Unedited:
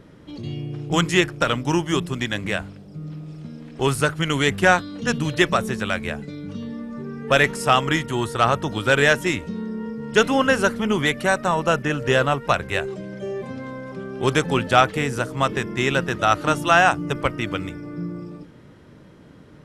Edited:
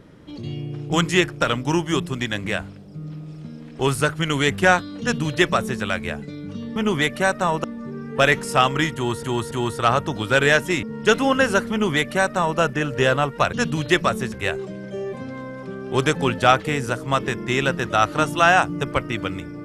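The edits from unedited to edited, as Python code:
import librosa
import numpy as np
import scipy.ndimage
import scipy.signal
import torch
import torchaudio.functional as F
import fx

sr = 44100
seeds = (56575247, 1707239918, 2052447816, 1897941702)

y = fx.edit(x, sr, fx.duplicate(start_s=5.01, length_s=0.8, to_s=12.62),
    fx.repeat(start_s=8.07, length_s=0.28, count=3),
    fx.cut(start_s=9.39, length_s=0.53),
    fx.duplicate(start_s=10.8, length_s=0.88, to_s=6.76), tone=tone)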